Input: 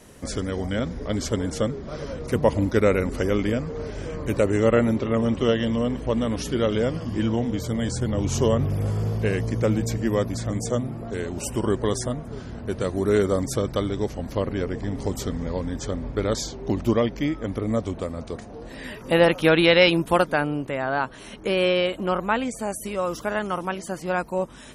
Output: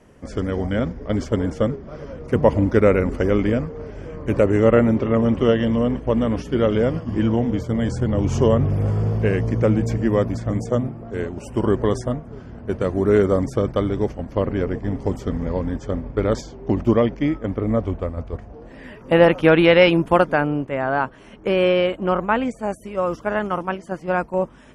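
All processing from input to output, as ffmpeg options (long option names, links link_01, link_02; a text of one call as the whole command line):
ffmpeg -i in.wav -filter_complex "[0:a]asettb=1/sr,asplit=3[link_01][link_02][link_03];[link_01]atrim=end=17.524[link_04];[link_02]atrim=start=17.52:end=18.53,asetpts=PTS-STARTPTS,afade=type=in:duration=0.004:curve=qsin,afade=type=out:start_time=1.006:duration=0.004:curve=qsin,asubboost=boost=11.5:cutoff=100,acrossover=split=4100[link_05][link_06];[link_06]acompressor=threshold=-57dB:ratio=4:attack=1:release=60[link_07];[link_05][link_07]amix=inputs=2:normalize=0[link_08];[link_03]atrim=start=18.526[link_09];[link_04][link_08]acrossfade=duration=0.004:curve1=hsin:curve2=qsin[link_10];[link_10][link_09]acrossfade=duration=0.004:curve1=qsin:curve2=hsin,aemphasis=mode=reproduction:type=75fm,agate=range=-6dB:threshold=-28dB:ratio=16:detection=peak,equalizer=frequency=3900:width_type=o:width=0.23:gain=-9.5,volume=3.5dB" out.wav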